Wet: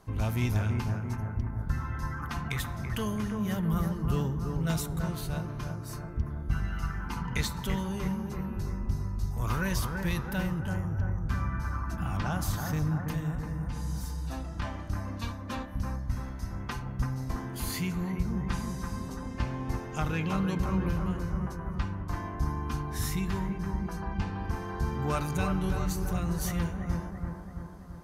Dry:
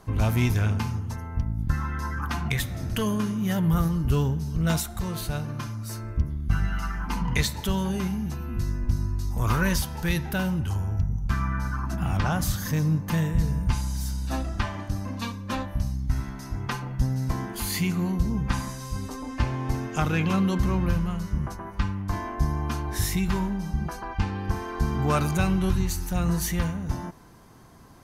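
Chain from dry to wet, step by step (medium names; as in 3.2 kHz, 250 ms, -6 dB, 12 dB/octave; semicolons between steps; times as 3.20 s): 13.03–14.62 s: compression, threshold -26 dBFS, peak gain reduction 8.5 dB; on a send: bucket-brigade echo 334 ms, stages 4096, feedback 60%, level -4.5 dB; on the sum: trim -6.5 dB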